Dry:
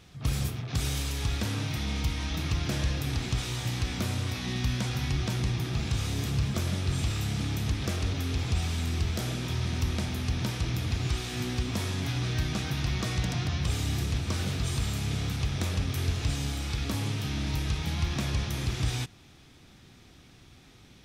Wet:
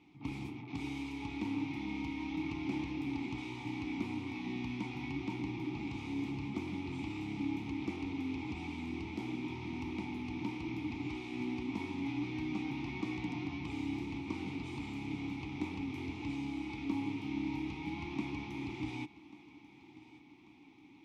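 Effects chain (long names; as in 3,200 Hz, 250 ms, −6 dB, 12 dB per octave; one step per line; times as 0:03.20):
formant filter u
feedback echo with a high-pass in the loop 1,140 ms, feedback 59%, high-pass 170 Hz, level −18 dB
level +7 dB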